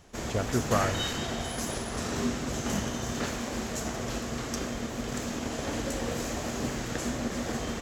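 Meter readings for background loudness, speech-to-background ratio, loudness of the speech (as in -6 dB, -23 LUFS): -32.5 LUFS, 0.5 dB, -32.0 LUFS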